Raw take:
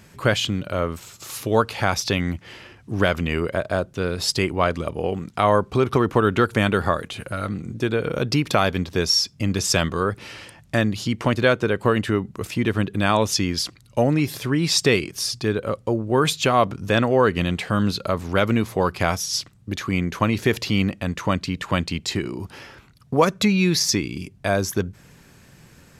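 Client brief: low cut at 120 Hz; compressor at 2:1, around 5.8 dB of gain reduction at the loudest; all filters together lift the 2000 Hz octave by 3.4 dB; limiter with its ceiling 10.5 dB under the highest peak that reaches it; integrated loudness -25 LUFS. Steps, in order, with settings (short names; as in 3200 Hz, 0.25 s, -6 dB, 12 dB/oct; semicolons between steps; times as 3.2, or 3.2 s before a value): HPF 120 Hz; bell 2000 Hz +4.5 dB; compressor 2:1, threshold -22 dBFS; gain +2.5 dB; limiter -12 dBFS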